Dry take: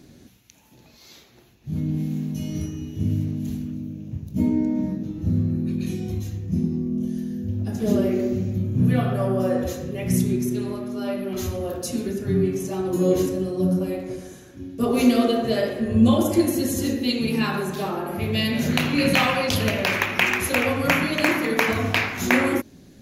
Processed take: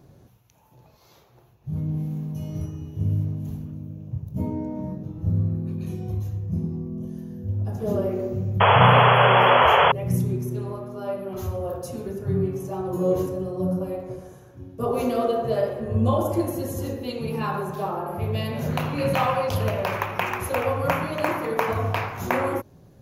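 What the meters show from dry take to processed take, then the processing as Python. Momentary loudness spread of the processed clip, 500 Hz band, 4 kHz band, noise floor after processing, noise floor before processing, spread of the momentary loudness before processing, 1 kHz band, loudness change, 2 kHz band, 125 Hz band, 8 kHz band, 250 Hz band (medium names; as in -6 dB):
17 LU, +0.5 dB, -2.0 dB, -54 dBFS, -51 dBFS, 10 LU, +8.0 dB, -1.0 dB, -2.0 dB, +1.0 dB, -10.0 dB, -7.5 dB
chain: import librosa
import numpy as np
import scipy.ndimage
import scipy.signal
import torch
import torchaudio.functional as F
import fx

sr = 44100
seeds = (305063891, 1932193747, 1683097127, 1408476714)

y = fx.spec_paint(x, sr, seeds[0], shape='noise', start_s=8.6, length_s=1.32, low_hz=390.0, high_hz=3400.0, level_db=-13.0)
y = fx.graphic_eq(y, sr, hz=(125, 250, 500, 1000, 2000, 4000, 8000), db=(8, -10, 4, 7, -7, -7, -8))
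y = y * librosa.db_to_amplitude(-3.0)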